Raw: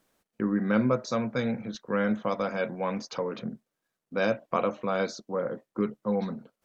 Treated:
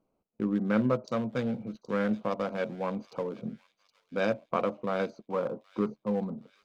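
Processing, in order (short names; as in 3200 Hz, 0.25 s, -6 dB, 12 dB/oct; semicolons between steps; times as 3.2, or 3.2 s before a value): Wiener smoothing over 25 samples; 5.13–6.05 bell 990 Hz +7.5 dB 1 oct; on a send: thin delay 0.77 s, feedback 45%, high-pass 3400 Hz, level -11.5 dB; on the sum: gain -1.5 dB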